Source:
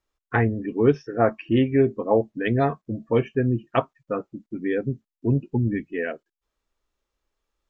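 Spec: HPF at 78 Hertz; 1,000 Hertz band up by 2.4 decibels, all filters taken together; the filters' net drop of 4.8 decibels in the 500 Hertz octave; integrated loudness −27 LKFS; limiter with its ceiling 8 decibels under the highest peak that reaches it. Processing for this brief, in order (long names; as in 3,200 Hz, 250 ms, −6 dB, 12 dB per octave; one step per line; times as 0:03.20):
high-pass filter 78 Hz
parametric band 500 Hz −8 dB
parametric band 1,000 Hz +7 dB
level +1 dB
brickwall limiter −13 dBFS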